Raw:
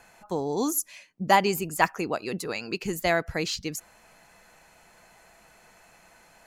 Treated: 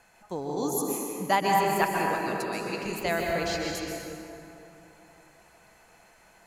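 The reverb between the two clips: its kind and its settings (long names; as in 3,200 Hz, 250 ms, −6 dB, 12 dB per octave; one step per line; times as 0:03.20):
dense smooth reverb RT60 3.1 s, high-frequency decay 0.5×, pre-delay 115 ms, DRR −1.5 dB
level −5 dB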